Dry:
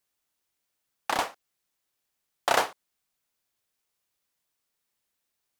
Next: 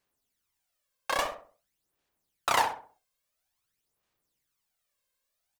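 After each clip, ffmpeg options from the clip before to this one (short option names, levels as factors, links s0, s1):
-filter_complex "[0:a]aphaser=in_gain=1:out_gain=1:delay=1.9:decay=0.66:speed=0.49:type=sinusoidal,asplit=2[s0][s1];[s1]adelay=65,lowpass=f=1300:p=1,volume=0.562,asplit=2[s2][s3];[s3]adelay=65,lowpass=f=1300:p=1,volume=0.4,asplit=2[s4][s5];[s5]adelay=65,lowpass=f=1300:p=1,volume=0.4,asplit=2[s6][s7];[s7]adelay=65,lowpass=f=1300:p=1,volume=0.4,asplit=2[s8][s9];[s9]adelay=65,lowpass=f=1300:p=1,volume=0.4[s10];[s2][s4][s6][s8][s10]amix=inputs=5:normalize=0[s11];[s0][s11]amix=inputs=2:normalize=0,volume=0.668"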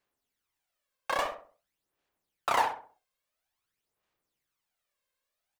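-filter_complex "[0:a]bass=f=250:g=-4,treble=f=4000:g=-6,acrossover=split=1400[s0][s1];[s1]volume=35.5,asoftclip=hard,volume=0.0282[s2];[s0][s2]amix=inputs=2:normalize=0"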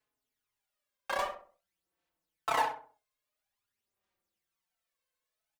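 -filter_complex "[0:a]asplit=2[s0][s1];[s1]adelay=4.2,afreqshift=-0.36[s2];[s0][s2]amix=inputs=2:normalize=1"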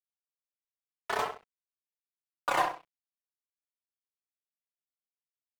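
-af "aeval=exprs='sgn(val(0))*max(abs(val(0))-0.00188,0)':c=same,aeval=exprs='val(0)*sin(2*PI*140*n/s)':c=same,volume=1.78"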